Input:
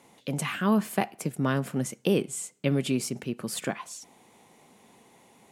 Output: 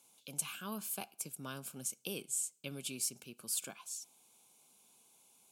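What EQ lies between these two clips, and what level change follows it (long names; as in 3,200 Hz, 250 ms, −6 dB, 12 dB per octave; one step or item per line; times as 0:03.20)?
Butterworth band-reject 1,900 Hz, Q 3.3
first-order pre-emphasis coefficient 0.9
−1.0 dB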